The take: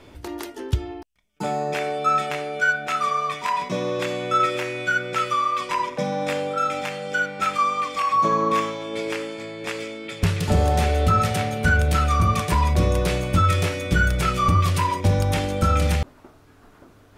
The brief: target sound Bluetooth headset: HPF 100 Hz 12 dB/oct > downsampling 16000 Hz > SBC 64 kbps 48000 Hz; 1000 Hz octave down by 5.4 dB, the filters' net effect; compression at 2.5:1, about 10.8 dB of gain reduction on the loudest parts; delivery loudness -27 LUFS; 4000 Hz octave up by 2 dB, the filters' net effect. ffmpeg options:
-af "equalizer=f=1k:t=o:g=-7.5,equalizer=f=4k:t=o:g=3,acompressor=threshold=-32dB:ratio=2.5,highpass=100,aresample=16000,aresample=44100,volume=6dB" -ar 48000 -c:a sbc -b:a 64k

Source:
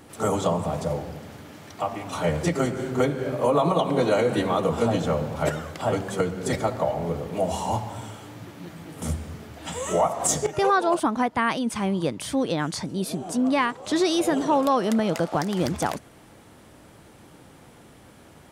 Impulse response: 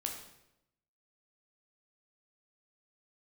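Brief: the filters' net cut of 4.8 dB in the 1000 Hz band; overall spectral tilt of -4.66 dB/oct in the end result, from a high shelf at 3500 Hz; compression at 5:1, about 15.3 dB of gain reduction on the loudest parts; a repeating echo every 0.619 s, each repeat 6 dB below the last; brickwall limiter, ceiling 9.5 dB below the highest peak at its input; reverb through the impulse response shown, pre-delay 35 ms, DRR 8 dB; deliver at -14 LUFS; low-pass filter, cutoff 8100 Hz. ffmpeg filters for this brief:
-filter_complex "[0:a]lowpass=8.1k,equalizer=f=1k:t=o:g=-7,highshelf=f=3.5k:g=7,acompressor=threshold=-36dB:ratio=5,alimiter=level_in=8.5dB:limit=-24dB:level=0:latency=1,volume=-8.5dB,aecho=1:1:619|1238|1857|2476|3095|3714:0.501|0.251|0.125|0.0626|0.0313|0.0157,asplit=2[a][b];[1:a]atrim=start_sample=2205,adelay=35[c];[b][c]afir=irnorm=-1:irlink=0,volume=-8.5dB[d];[a][d]amix=inputs=2:normalize=0,volume=26dB"

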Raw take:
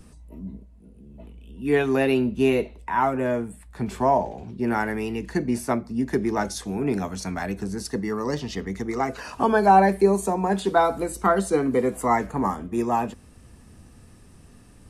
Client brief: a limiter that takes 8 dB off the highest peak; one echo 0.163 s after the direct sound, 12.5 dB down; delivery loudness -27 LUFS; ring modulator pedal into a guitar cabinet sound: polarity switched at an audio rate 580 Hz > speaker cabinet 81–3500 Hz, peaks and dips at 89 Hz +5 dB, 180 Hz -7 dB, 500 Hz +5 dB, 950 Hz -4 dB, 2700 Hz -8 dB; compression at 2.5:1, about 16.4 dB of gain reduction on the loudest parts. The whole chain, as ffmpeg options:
-af "acompressor=threshold=-37dB:ratio=2.5,alimiter=level_in=3dB:limit=-24dB:level=0:latency=1,volume=-3dB,aecho=1:1:163:0.237,aeval=exprs='val(0)*sgn(sin(2*PI*580*n/s))':c=same,highpass=81,equalizer=f=89:t=q:w=4:g=5,equalizer=f=180:t=q:w=4:g=-7,equalizer=f=500:t=q:w=4:g=5,equalizer=f=950:t=q:w=4:g=-4,equalizer=f=2.7k:t=q:w=4:g=-8,lowpass=f=3.5k:w=0.5412,lowpass=f=3.5k:w=1.3066,volume=12dB"

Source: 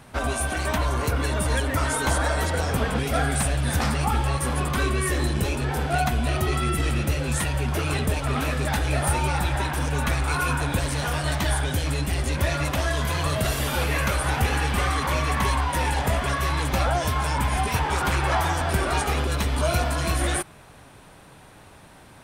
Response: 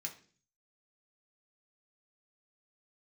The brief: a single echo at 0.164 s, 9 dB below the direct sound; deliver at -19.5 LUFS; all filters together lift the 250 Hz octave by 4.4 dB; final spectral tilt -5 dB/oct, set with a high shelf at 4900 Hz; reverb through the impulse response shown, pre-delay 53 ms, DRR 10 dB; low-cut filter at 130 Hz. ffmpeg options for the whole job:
-filter_complex "[0:a]highpass=130,equalizer=f=250:t=o:g=6.5,highshelf=f=4.9k:g=-5,aecho=1:1:164:0.355,asplit=2[a][b];[1:a]atrim=start_sample=2205,adelay=53[c];[b][c]afir=irnorm=-1:irlink=0,volume=-8dB[d];[a][d]amix=inputs=2:normalize=0,volume=5dB"

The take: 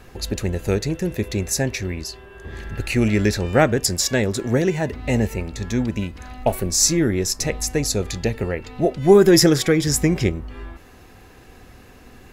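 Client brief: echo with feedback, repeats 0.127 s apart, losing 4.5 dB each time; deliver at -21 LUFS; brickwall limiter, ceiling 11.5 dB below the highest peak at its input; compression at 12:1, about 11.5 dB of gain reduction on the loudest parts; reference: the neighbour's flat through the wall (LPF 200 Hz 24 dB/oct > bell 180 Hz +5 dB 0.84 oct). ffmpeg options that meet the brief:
-af "acompressor=threshold=-19dB:ratio=12,alimiter=limit=-19dB:level=0:latency=1,lowpass=f=200:w=0.5412,lowpass=f=200:w=1.3066,equalizer=f=180:t=o:w=0.84:g=5,aecho=1:1:127|254|381|508|635|762|889|1016|1143:0.596|0.357|0.214|0.129|0.0772|0.0463|0.0278|0.0167|0.01,volume=8.5dB"

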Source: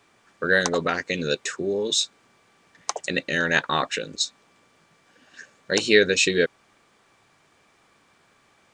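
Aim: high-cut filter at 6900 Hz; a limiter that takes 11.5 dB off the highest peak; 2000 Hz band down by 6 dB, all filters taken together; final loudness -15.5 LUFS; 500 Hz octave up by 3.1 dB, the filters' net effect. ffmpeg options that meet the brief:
-af "lowpass=6.9k,equalizer=f=500:t=o:g=4,equalizer=f=2k:t=o:g=-8,volume=11.5dB,alimiter=limit=-3.5dB:level=0:latency=1"

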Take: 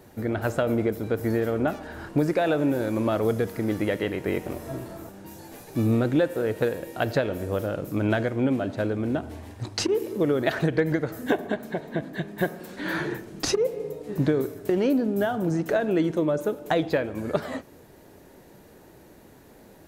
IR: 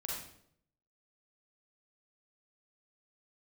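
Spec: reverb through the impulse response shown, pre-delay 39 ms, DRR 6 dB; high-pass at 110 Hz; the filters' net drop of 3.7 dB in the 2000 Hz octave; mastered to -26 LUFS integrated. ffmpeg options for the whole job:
-filter_complex "[0:a]highpass=110,equalizer=f=2k:t=o:g=-5,asplit=2[a][b];[1:a]atrim=start_sample=2205,adelay=39[c];[b][c]afir=irnorm=-1:irlink=0,volume=-7dB[d];[a][d]amix=inputs=2:normalize=0"

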